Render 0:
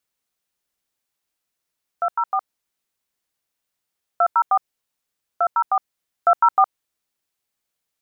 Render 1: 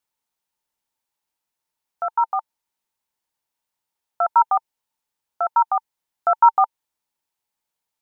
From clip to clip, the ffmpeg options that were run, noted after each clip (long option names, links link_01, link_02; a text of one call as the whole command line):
ffmpeg -i in.wav -af "equalizer=frequency=900:width_type=o:width=0.26:gain=12.5,volume=-3.5dB" out.wav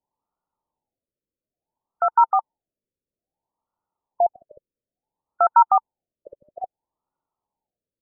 ffmpeg -i in.wav -filter_complex "[0:a]asplit=2[link_01][link_02];[link_02]alimiter=limit=-12.5dB:level=0:latency=1:release=173,volume=-2.5dB[link_03];[link_01][link_03]amix=inputs=2:normalize=0,afftfilt=real='re*lt(b*sr/1024,590*pow(1500/590,0.5+0.5*sin(2*PI*0.59*pts/sr)))':imag='im*lt(b*sr/1024,590*pow(1500/590,0.5+0.5*sin(2*PI*0.59*pts/sr)))':win_size=1024:overlap=0.75" out.wav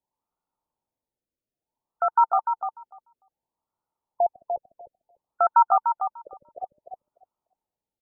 ffmpeg -i in.wav -filter_complex "[0:a]asplit=2[link_01][link_02];[link_02]adelay=296,lowpass=frequency=970:poles=1,volume=-4.5dB,asplit=2[link_03][link_04];[link_04]adelay=296,lowpass=frequency=970:poles=1,volume=0.16,asplit=2[link_05][link_06];[link_06]adelay=296,lowpass=frequency=970:poles=1,volume=0.16[link_07];[link_01][link_03][link_05][link_07]amix=inputs=4:normalize=0,volume=-3dB" out.wav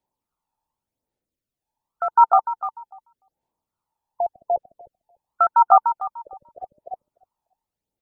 ffmpeg -i in.wav -af "aphaser=in_gain=1:out_gain=1:delay=1.2:decay=0.49:speed=0.87:type=sinusoidal,volume=1.5dB" out.wav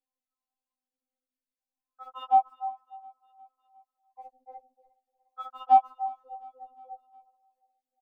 ffmpeg -i in.wav -af "asoftclip=type=tanh:threshold=-3.5dB,aecho=1:1:357|714|1071|1428:0.0631|0.036|0.0205|0.0117,afftfilt=real='re*3.46*eq(mod(b,12),0)':imag='im*3.46*eq(mod(b,12),0)':win_size=2048:overlap=0.75,volume=-8dB" out.wav